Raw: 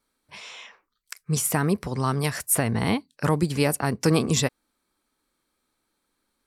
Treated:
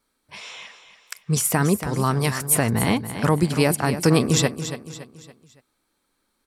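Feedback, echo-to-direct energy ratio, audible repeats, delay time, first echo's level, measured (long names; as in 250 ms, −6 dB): 41%, −10.0 dB, 4, 282 ms, −11.0 dB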